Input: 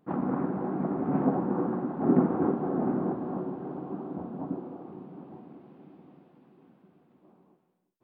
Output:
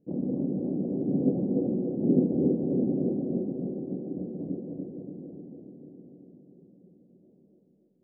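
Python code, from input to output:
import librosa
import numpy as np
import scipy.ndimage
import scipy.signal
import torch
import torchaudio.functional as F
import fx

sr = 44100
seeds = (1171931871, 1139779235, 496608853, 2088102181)

y = scipy.signal.sosfilt(scipy.signal.ellip(4, 1.0, 80, 540.0, 'lowpass', fs=sr, output='sos'), x)
y = fx.echo_feedback(y, sr, ms=288, feedback_pct=55, wet_db=-4.0)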